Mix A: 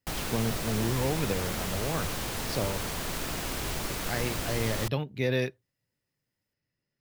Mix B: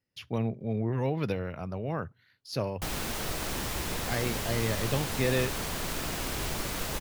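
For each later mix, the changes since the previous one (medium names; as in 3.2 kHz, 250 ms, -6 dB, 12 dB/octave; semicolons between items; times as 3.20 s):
background: entry +2.75 s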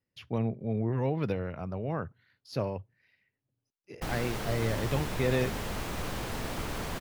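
background: entry +1.20 s; master: add treble shelf 3.2 kHz -9 dB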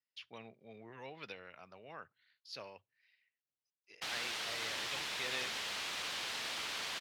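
background +5.5 dB; master: add band-pass filter 3.7 kHz, Q 1.1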